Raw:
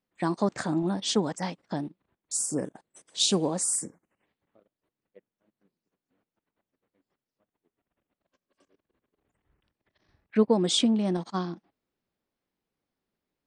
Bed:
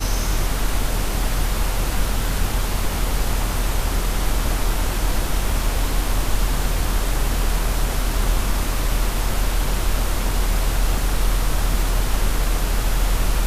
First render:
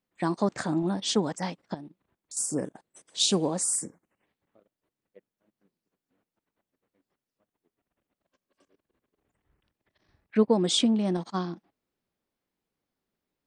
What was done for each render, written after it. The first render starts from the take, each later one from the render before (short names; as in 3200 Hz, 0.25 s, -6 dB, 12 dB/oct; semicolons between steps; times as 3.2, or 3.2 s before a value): 1.74–2.37 compressor 2.5:1, threshold -44 dBFS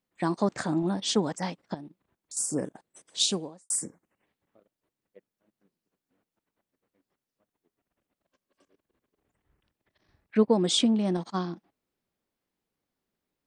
3.22–3.7 fade out quadratic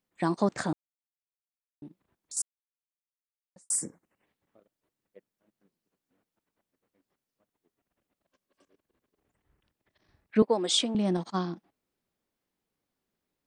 0.73–1.82 mute; 2.42–3.56 mute; 10.42–10.95 HPF 400 Hz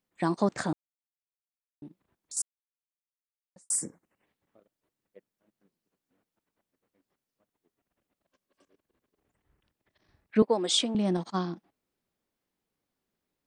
nothing audible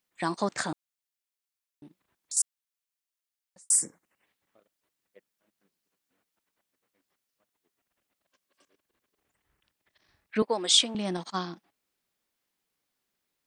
tilt shelf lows -6 dB, about 850 Hz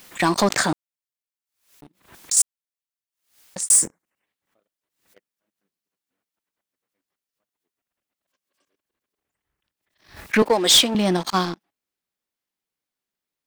sample leveller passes 3; backwards sustainer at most 130 dB/s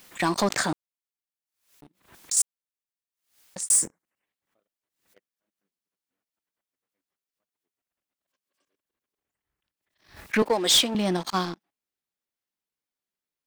gain -5 dB